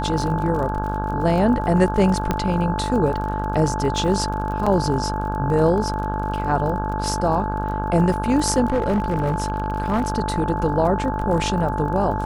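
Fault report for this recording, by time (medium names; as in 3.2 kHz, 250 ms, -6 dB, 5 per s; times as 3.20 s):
buzz 50 Hz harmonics 33 -26 dBFS
crackle 35 per s -29 dBFS
whine 870 Hz -26 dBFS
2.31 s: pop -7 dBFS
4.66–4.67 s: dropout 5.2 ms
8.70–10.08 s: clipped -15.5 dBFS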